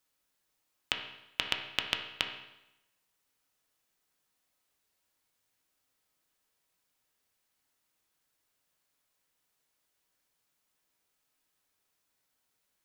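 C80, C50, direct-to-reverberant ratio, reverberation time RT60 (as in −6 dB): 9.5 dB, 7.0 dB, 2.5 dB, 0.90 s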